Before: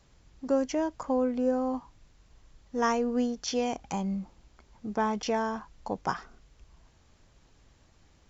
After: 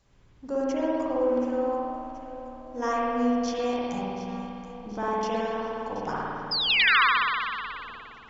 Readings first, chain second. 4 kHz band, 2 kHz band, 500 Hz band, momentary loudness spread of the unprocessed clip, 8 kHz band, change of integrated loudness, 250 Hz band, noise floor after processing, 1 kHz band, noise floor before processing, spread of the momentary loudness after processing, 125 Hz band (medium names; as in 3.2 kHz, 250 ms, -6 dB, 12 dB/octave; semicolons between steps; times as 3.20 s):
+15.0 dB, +15.0 dB, +3.0 dB, 11 LU, no reading, +4.5 dB, +1.0 dB, -52 dBFS, +5.5 dB, -63 dBFS, 19 LU, -0.5 dB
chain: echo whose repeats swap between lows and highs 364 ms, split 830 Hz, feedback 72%, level -11 dB; painted sound fall, 6.51–7.02 s, 970–5200 Hz -21 dBFS; spring tank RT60 2.4 s, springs 53 ms, chirp 75 ms, DRR -7 dB; trim -5.5 dB